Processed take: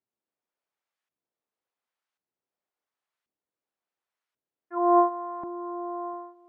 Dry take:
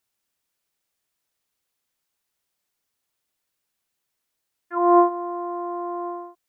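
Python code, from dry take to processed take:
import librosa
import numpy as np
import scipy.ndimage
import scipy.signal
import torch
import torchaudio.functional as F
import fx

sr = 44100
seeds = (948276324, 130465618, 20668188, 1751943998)

p1 = fx.filter_lfo_bandpass(x, sr, shape='saw_up', hz=0.92, low_hz=260.0, high_hz=1500.0, q=0.73)
p2 = p1 + fx.echo_single(p1, sr, ms=698, db=-22.0, dry=0)
y = p2 * 10.0 ** (-2.5 / 20.0)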